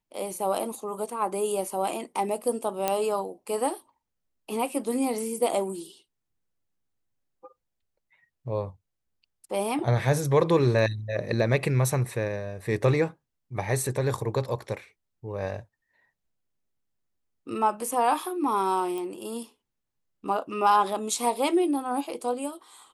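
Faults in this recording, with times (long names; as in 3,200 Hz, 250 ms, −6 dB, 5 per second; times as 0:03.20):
0:02.88: click −9 dBFS
0:18.98: click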